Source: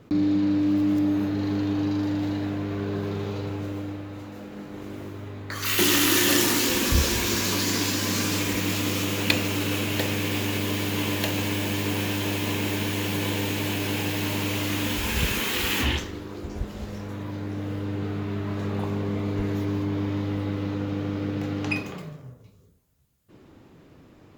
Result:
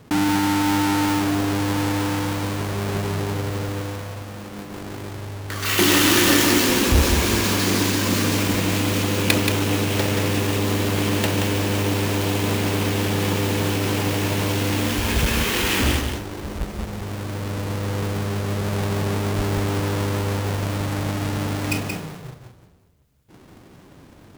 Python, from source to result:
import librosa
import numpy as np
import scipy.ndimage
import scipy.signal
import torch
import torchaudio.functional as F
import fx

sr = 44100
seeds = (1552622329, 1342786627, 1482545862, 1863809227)

y = fx.halfwave_hold(x, sr)
y = y + 10.0 ** (-5.5 / 20.0) * np.pad(y, (int(178 * sr / 1000.0), 0))[:len(y)]
y = F.gain(torch.from_numpy(y), -1.0).numpy()